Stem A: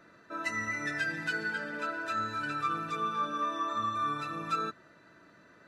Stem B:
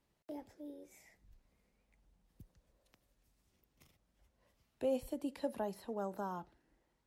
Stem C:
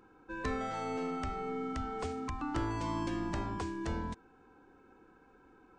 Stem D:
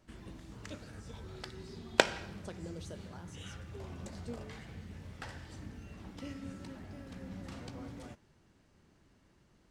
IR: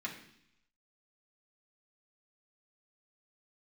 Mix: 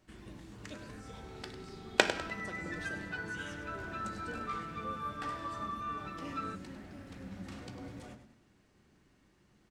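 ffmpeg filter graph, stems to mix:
-filter_complex "[0:a]lowpass=3400,adelay=1850,volume=0.422[s0];[1:a]volume=0.158[s1];[2:a]acompressor=threshold=0.01:ratio=6,adelay=450,volume=0.282[s2];[3:a]volume=0.75,asplit=3[s3][s4][s5];[s4]volume=0.531[s6];[s5]volume=0.335[s7];[4:a]atrim=start_sample=2205[s8];[s6][s8]afir=irnorm=-1:irlink=0[s9];[s7]aecho=0:1:100|200|300|400|500:1|0.37|0.137|0.0507|0.0187[s10];[s0][s1][s2][s3][s9][s10]amix=inputs=6:normalize=0"

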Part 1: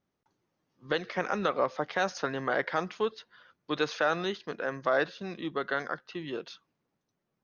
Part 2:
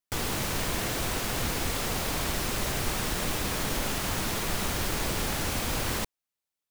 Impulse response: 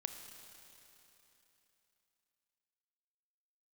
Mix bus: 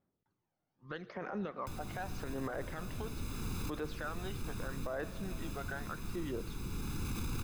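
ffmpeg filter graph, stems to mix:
-filter_complex "[0:a]highshelf=f=2500:g=-11,acompressor=threshold=0.0282:ratio=3,aphaser=in_gain=1:out_gain=1:delay=1.4:decay=0.57:speed=0.8:type=sinusoidal,volume=0.335,asplit=3[s0][s1][s2];[s1]volume=0.447[s3];[1:a]acrossover=split=410[s4][s5];[s5]acompressor=threshold=0.01:ratio=6[s6];[s4][s6]amix=inputs=2:normalize=0,aecho=1:1:0.8:0.9,adelay=1550,volume=0.75,asplit=2[s7][s8];[s8]volume=0.168[s9];[s2]apad=whole_len=364134[s10];[s7][s10]sidechaincompress=threshold=0.001:ratio=4:attack=16:release=620[s11];[2:a]atrim=start_sample=2205[s12];[s3][s9]amix=inputs=2:normalize=0[s13];[s13][s12]afir=irnorm=-1:irlink=0[s14];[s0][s11][s14]amix=inputs=3:normalize=0,alimiter=level_in=2:limit=0.0631:level=0:latency=1:release=10,volume=0.501"

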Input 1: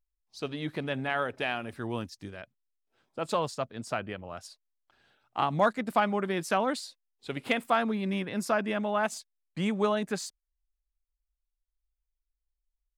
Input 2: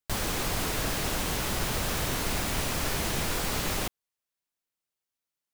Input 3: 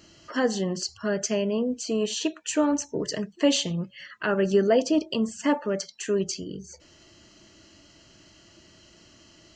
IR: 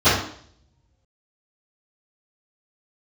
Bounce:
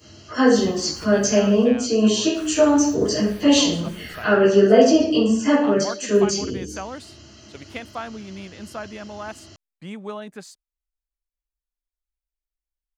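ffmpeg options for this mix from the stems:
-filter_complex "[0:a]adelay=250,volume=0.501[s0];[1:a]asplit=2[s1][s2];[s2]afreqshift=1.4[s3];[s1][s3]amix=inputs=2:normalize=1,adelay=450,volume=0.224,asplit=3[s4][s5][s6];[s4]atrim=end=1.64,asetpts=PTS-STARTPTS,afade=t=out:st=1.636:d=0.004:c=hsin[s7];[s5]atrim=start=1.64:end=2.34,asetpts=PTS-STARTPTS,volume=0[s8];[s6]atrim=start=2.34,asetpts=PTS-STARTPTS,afade=t=in:d=0.004:c=hsin[s9];[s7][s8][s9]concat=n=3:v=0:a=1,asplit=2[s10][s11];[s11]volume=0.0668[s12];[2:a]highshelf=f=5500:g=10.5,volume=0.501,asplit=3[s13][s14][s15];[s14]volume=0.266[s16];[s15]apad=whole_len=264119[s17];[s10][s17]sidechaincompress=threshold=0.00794:ratio=8:attack=16:release=127[s18];[3:a]atrim=start_sample=2205[s19];[s12][s16]amix=inputs=2:normalize=0[s20];[s20][s19]afir=irnorm=-1:irlink=0[s21];[s0][s18][s13][s21]amix=inputs=4:normalize=0"

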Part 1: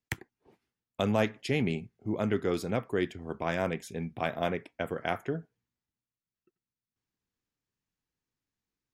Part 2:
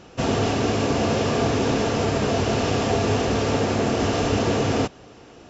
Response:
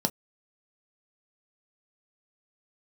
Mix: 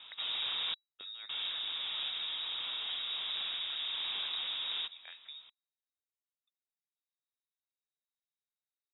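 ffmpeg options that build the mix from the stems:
-filter_complex "[0:a]lowpass=3800,equalizer=f=730:t=o:w=1.4:g=-14.5,acompressor=threshold=0.0316:ratio=6,volume=0.251,asplit=2[s0][s1];[1:a]volume=0.531,asplit=3[s2][s3][s4];[s2]atrim=end=0.74,asetpts=PTS-STARTPTS,afade=t=out:st=0.736:d=0.004:c=hsin[s5];[s3]atrim=start=0.74:end=1.29,asetpts=PTS-STARTPTS,volume=0[s6];[s4]atrim=start=1.29,asetpts=PTS-STARTPTS,afade=t=in:d=0.004:c=hsin[s7];[s5][s6][s7]concat=n=3:v=0:a=1[s8];[s1]apad=whole_len=242384[s9];[s8][s9]sidechaincompress=threshold=0.00316:ratio=8:attack=24:release=1280[s10];[s0][s10]amix=inputs=2:normalize=0,asoftclip=type=tanh:threshold=0.0224,lowpass=f=3300:t=q:w=0.5098,lowpass=f=3300:t=q:w=0.6013,lowpass=f=3300:t=q:w=0.9,lowpass=f=3300:t=q:w=2.563,afreqshift=-3900"

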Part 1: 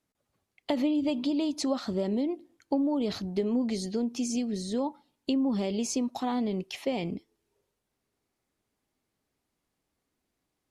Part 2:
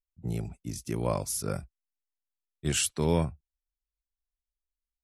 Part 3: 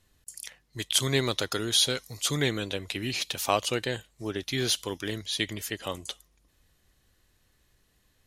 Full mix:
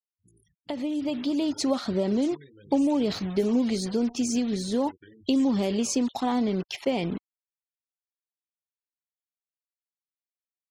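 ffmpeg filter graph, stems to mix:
-filter_complex "[0:a]acrusher=bits=6:mix=0:aa=0.5,volume=0.501[s0];[1:a]flanger=delay=8.8:depth=5.5:regen=63:speed=0.77:shape=sinusoidal,volume=0.119[s1];[2:a]acompressor=threshold=0.0224:ratio=2,volume=0.2[s2];[s1][s2]amix=inputs=2:normalize=0,flanger=delay=19:depth=3.4:speed=0.67,acompressor=threshold=0.00158:ratio=10,volume=1[s3];[s0][s3]amix=inputs=2:normalize=0,afftfilt=real='re*gte(hypot(re,im),0.002)':imag='im*gte(hypot(re,im),0.002)':win_size=1024:overlap=0.75,dynaudnorm=f=800:g=3:m=3.16"

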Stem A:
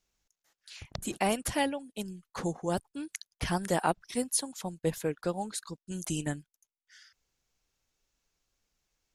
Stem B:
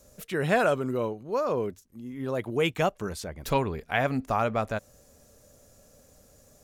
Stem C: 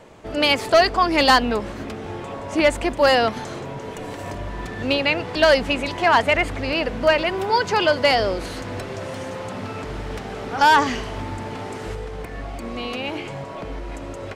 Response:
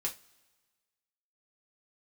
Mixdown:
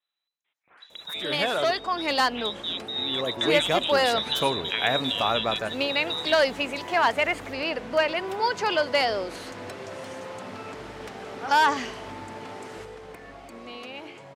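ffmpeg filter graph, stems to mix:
-filter_complex "[0:a]volume=0.631,asplit=3[s0][s1][s2];[s1]volume=0.112[s3];[1:a]adelay=800,volume=0.891,asplit=3[s4][s5][s6];[s4]atrim=end=1.61,asetpts=PTS-STARTPTS,afade=t=out:st=1.606:d=0.004:c=hsin[s7];[s5]atrim=start=1.61:end=2.88,asetpts=PTS-STARTPTS,volume=0[s8];[s6]atrim=start=2.88,asetpts=PTS-STARTPTS,afade=t=in:d=0.004:c=hsin[s9];[s7][s8][s9]concat=n=3:v=0:a=1,asplit=2[s10][s11];[s11]volume=0.596[s12];[2:a]adelay=900,volume=0.251[s13];[s2]apad=whole_len=327820[s14];[s10][s14]sidechaingate=range=0.0224:threshold=0.001:ratio=16:detection=peak[s15];[s0][s15]amix=inputs=2:normalize=0,lowpass=f=3400:t=q:w=0.5098,lowpass=f=3400:t=q:w=0.6013,lowpass=f=3400:t=q:w=0.9,lowpass=f=3400:t=q:w=2.563,afreqshift=-4000,acompressor=threshold=0.0224:ratio=6,volume=1[s16];[s3][s12]amix=inputs=2:normalize=0,aecho=0:1:100:1[s17];[s13][s16][s17]amix=inputs=3:normalize=0,highpass=f=280:p=1,dynaudnorm=f=250:g=17:m=2.24"

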